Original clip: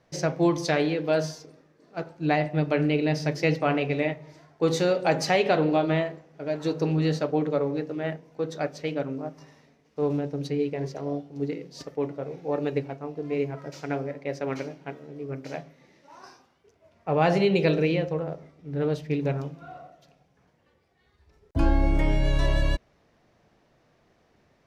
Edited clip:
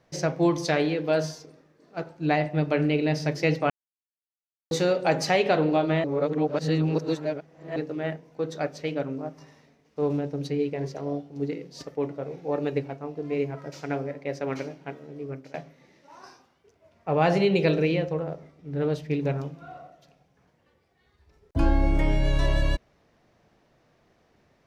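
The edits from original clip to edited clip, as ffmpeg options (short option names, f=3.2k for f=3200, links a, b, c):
-filter_complex "[0:a]asplit=6[a][b][c][d][e][f];[a]atrim=end=3.7,asetpts=PTS-STARTPTS,afade=t=out:st=3.696:d=0.004:c=hsin[g];[b]atrim=start=3.7:end=4.71,asetpts=PTS-STARTPTS,volume=0[h];[c]atrim=start=4.71:end=6.042,asetpts=PTS-STARTPTS,afade=t=in:d=0.004:c=hsin[i];[d]atrim=start=6.038:end=7.762,asetpts=PTS-STARTPTS,areverse[j];[e]atrim=start=7.758:end=15.54,asetpts=PTS-STARTPTS,afade=t=out:st=7.512:d=0.27:silence=0.125893[k];[f]atrim=start=15.54,asetpts=PTS-STARTPTS,afade=t=in:d=0.004:c=hsin:silence=0.125893[l];[g][h][i]concat=n=3:v=0:a=1[m];[m][j]acrossfade=d=0.004:c1=hsin:c2=hsin[n];[k][l]concat=n=2:v=0:a=1[o];[n][o]acrossfade=d=0.004:c1=hsin:c2=hsin"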